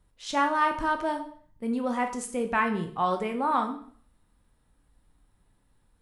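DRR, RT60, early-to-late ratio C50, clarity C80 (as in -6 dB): 4.5 dB, 0.55 s, 10.0 dB, 14.0 dB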